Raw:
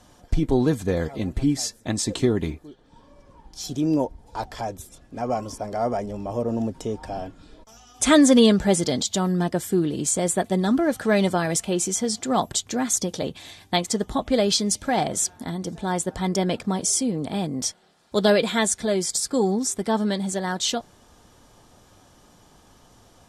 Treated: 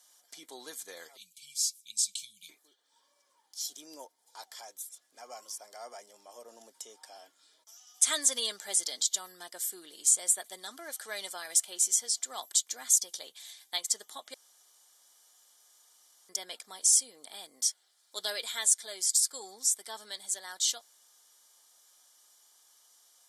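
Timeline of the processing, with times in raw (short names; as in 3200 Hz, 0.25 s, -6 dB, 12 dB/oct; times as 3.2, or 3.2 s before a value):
1.17–2.49 brick-wall FIR band-stop 210–2200 Hz
14.34–16.29 room tone
whole clip: HPF 390 Hz 12 dB/oct; differentiator; notch 2600 Hz, Q 6.8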